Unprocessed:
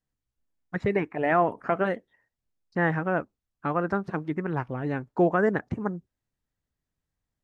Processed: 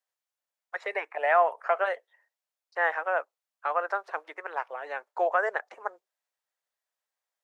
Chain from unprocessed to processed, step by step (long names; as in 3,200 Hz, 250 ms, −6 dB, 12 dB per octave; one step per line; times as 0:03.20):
Butterworth high-pass 540 Hz 36 dB per octave
level +1.5 dB